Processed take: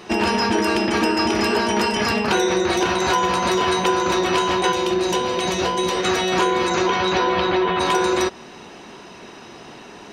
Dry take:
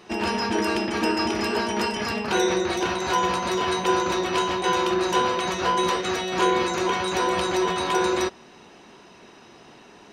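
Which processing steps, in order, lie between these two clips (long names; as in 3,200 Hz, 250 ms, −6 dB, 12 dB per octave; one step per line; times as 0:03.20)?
downward compressor, threshold −24 dBFS, peak gain reduction 8 dB
0:04.72–0:05.97: parametric band 1,300 Hz −7.5 dB 1.1 octaves
0:06.69–0:07.79: low-pass filter 7,300 Hz → 3,300 Hz 24 dB per octave
level +8.5 dB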